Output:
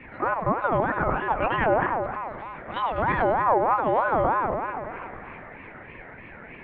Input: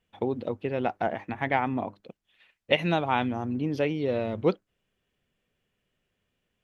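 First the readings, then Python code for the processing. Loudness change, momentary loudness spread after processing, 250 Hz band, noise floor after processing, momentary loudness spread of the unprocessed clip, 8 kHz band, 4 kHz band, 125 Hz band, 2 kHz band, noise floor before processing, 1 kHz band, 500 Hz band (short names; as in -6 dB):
+4.0 dB, 20 LU, -2.0 dB, -44 dBFS, 6 LU, n/a, -8.0 dB, 0.0 dB, +5.5 dB, -80 dBFS, +9.0 dB, +3.5 dB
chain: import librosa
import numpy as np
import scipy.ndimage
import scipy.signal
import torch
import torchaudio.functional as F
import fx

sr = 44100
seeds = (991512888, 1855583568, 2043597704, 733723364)

p1 = fx.spec_expand(x, sr, power=1.5)
p2 = scipy.signal.sosfilt(scipy.signal.butter(2, 1900.0, 'lowpass', fs=sr, output='sos'), p1)
p3 = fx.notch(p2, sr, hz=930.0, q=17.0)
p4 = fx.over_compress(p3, sr, threshold_db=-28.0, ratio=-0.5)
p5 = fx.peak_eq(p4, sr, hz=99.0, db=7.0, octaves=0.92)
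p6 = fx.dmg_noise_band(p5, sr, seeds[0], low_hz=590.0, high_hz=1500.0, level_db=-49.0)
p7 = p6 + fx.echo_split(p6, sr, split_hz=630.0, low_ms=250, high_ms=101, feedback_pct=52, wet_db=-5, dry=0)
p8 = fx.lpc_monotone(p7, sr, seeds[1], pitch_hz=220.0, order=10)
p9 = fx.ring_lfo(p8, sr, carrier_hz=810.0, swing_pct=30, hz=3.2)
y = F.gain(torch.from_numpy(p9), 7.0).numpy()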